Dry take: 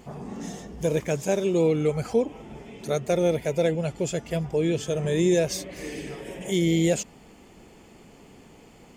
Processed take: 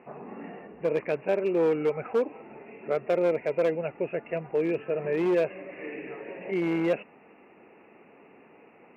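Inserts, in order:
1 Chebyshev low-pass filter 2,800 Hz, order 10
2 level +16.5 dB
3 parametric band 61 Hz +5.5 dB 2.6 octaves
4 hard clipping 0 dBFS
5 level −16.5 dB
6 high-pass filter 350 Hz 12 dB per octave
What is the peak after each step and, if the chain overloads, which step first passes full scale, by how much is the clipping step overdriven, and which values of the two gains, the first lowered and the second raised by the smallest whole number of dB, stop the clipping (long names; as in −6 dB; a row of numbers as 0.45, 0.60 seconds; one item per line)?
−11.5, +5.0, +5.5, 0.0, −16.5, −14.0 dBFS
step 2, 5.5 dB
step 2 +10.5 dB, step 5 −10.5 dB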